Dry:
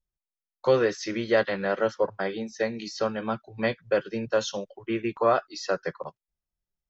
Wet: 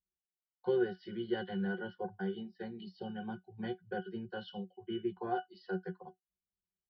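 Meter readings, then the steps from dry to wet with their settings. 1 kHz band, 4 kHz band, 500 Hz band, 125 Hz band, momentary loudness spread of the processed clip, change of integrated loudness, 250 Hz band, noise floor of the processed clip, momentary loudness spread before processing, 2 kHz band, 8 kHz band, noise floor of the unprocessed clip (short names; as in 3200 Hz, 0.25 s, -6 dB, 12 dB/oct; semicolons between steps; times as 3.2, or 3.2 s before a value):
-11.5 dB, -13.0 dB, -13.0 dB, -7.0 dB, 11 LU, -11.5 dB, -6.5 dB, under -85 dBFS, 9 LU, -13.5 dB, n/a, under -85 dBFS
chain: high shelf 3900 Hz +12 dB; comb 5.7 ms, depth 45%; downsampling 11025 Hz; spectral gain 2.82–3.08, 940–2500 Hz -12 dB; bell 600 Hz -8.5 dB 0.25 oct; octave resonator F#, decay 0.11 s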